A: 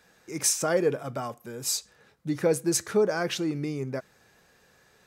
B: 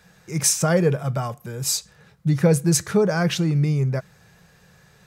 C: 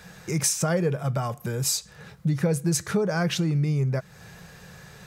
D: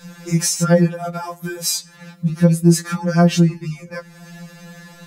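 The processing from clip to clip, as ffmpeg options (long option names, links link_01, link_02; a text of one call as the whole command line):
ffmpeg -i in.wav -af "lowshelf=frequency=210:width_type=q:width=3:gain=6.5,volume=5dB" out.wav
ffmpeg -i in.wav -af "acompressor=threshold=-35dB:ratio=2.5,volume=7.5dB" out.wav
ffmpeg -i in.wav -af "afftfilt=real='re*2.83*eq(mod(b,8),0)':imag='im*2.83*eq(mod(b,8),0)':win_size=2048:overlap=0.75,volume=7dB" out.wav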